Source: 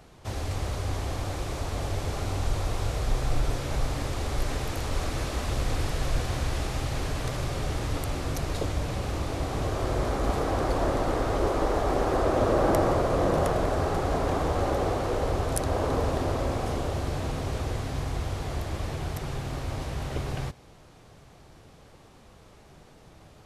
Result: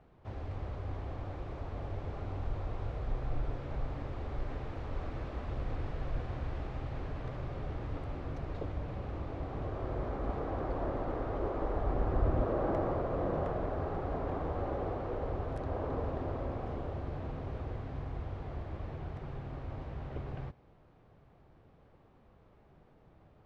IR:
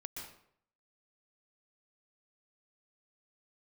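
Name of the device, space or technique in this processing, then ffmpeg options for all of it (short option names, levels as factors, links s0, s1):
phone in a pocket: -filter_complex "[0:a]asettb=1/sr,asplit=3[s0][s1][s2];[s0]atrim=end=11.594[s3];[s1]atrim=start=11.59:end=12.42,asetpts=PTS-STARTPTS,afade=t=in:d=0.004:c=qsin,afade=t=out:st=0.826:d=0.004:c=qsin,asubboost=boost=11:cutoff=220[s4];[s2]atrim=start=12.416[s5];[s3][s4]acrossfade=d=0.004:c1=hsin:c2=qsin[s6];[s6][s5]acrossfade=d=0.004:c1=qsin:c2=hsin,lowpass=3000,highshelf=f=2000:g=-9.5,volume=0.376"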